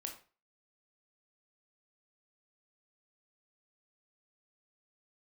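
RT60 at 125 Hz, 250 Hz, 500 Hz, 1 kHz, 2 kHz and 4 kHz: 0.40, 0.35, 0.35, 0.35, 0.35, 0.30 s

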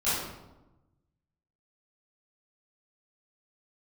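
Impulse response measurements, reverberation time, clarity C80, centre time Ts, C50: 1.0 s, 2.5 dB, 78 ms, -1.5 dB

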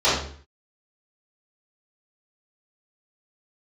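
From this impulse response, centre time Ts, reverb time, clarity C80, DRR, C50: 50 ms, 0.50 s, 6.5 dB, -13.0 dB, 1.5 dB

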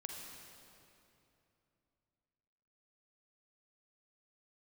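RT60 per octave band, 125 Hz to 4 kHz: 3.6, 3.3, 3.0, 2.8, 2.5, 2.2 s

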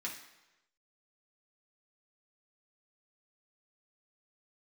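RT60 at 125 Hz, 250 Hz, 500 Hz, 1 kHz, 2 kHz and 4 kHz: 0.95, 0.90, 1.0, 1.0, 1.0, 0.90 s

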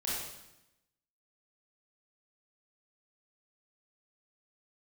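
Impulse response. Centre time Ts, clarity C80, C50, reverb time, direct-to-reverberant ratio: 80 ms, 2.0 dB, -2.0 dB, 0.90 s, -7.5 dB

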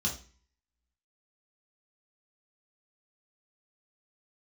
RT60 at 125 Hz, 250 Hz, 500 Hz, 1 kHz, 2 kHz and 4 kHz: 0.50, 0.50, 0.40, 0.40, 0.45, 0.40 s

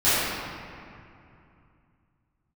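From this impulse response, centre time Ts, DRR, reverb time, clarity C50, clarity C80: 0.162 s, -17.5 dB, 2.6 s, -5.0 dB, -2.0 dB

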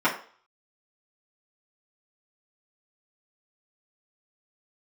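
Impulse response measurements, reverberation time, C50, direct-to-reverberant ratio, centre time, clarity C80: 0.45 s, 9.5 dB, -9.5 dB, 19 ms, 14.0 dB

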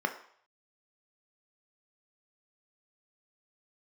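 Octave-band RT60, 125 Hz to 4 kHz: 0.50, 0.45, 0.55, 0.60, 0.55, 0.55 s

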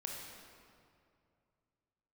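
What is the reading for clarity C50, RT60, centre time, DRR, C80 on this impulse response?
0.5 dB, 2.4 s, 98 ms, -1.0 dB, 2.0 dB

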